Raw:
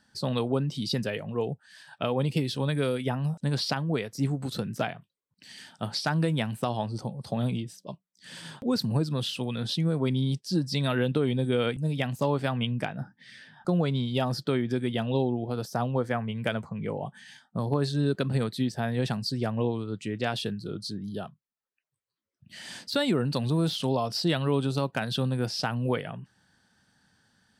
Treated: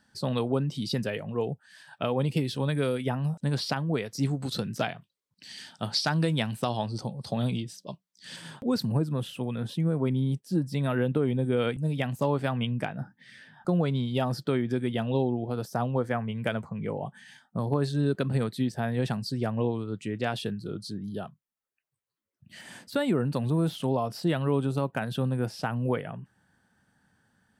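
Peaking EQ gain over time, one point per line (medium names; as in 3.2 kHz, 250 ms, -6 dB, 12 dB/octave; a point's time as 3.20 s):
peaking EQ 4.6 kHz 1.3 oct
-3 dB
from 4.06 s +4.5 dB
from 8.36 s -3.5 dB
from 8.92 s -15 dB
from 11.57 s -5 dB
from 22.61 s -12 dB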